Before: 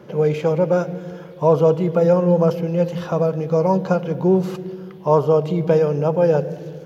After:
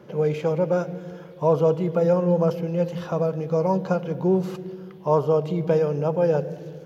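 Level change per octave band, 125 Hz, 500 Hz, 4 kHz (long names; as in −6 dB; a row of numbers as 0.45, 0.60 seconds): −4.5 dB, −4.5 dB, can't be measured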